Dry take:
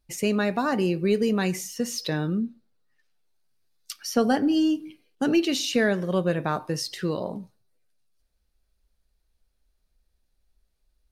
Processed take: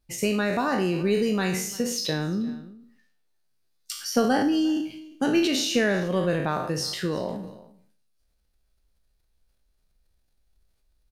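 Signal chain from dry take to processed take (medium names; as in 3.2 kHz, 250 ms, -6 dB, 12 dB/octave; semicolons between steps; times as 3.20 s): spectral sustain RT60 0.50 s; delay 349 ms -23 dB; transient shaper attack +2 dB, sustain +6 dB; trim -2 dB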